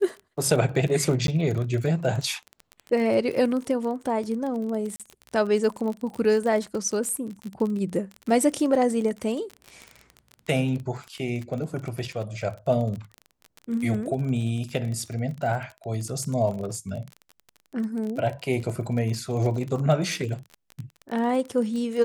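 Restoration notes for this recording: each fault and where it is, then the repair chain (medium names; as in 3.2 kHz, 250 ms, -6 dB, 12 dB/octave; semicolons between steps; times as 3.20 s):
crackle 29 per s -30 dBFS
1.27–1.28 s: dropout 12 ms
4.96–5.00 s: dropout 37 ms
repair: de-click; interpolate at 1.27 s, 12 ms; interpolate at 4.96 s, 37 ms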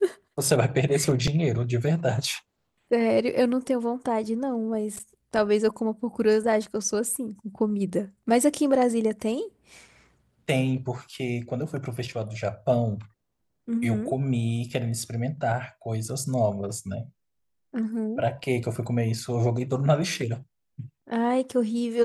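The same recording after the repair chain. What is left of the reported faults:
nothing left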